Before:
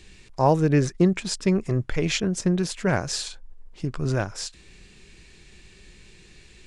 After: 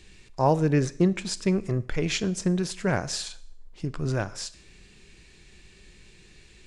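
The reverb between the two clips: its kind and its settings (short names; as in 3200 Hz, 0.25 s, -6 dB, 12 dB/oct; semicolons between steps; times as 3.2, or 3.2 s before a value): Schroeder reverb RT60 0.61 s, combs from 26 ms, DRR 16.5 dB; gain -2.5 dB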